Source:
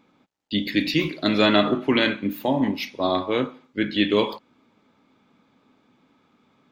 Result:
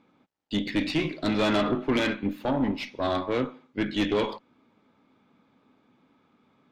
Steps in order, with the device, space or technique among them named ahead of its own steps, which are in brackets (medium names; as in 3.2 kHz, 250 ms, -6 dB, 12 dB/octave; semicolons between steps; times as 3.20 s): low-pass 9.9 kHz 12 dB/octave; tube preamp driven hard (valve stage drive 18 dB, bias 0.5; treble shelf 4 kHz -7.5 dB)